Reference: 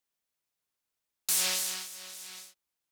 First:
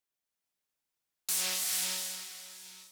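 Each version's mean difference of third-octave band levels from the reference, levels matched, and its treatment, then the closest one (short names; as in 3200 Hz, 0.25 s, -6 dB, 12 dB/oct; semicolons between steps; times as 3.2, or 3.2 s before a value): 4.5 dB: non-linear reverb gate 0.48 s rising, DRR 0 dB; gain -4 dB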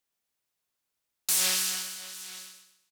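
2.0 dB: feedback echo 0.125 s, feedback 35%, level -7 dB; gain +2 dB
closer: second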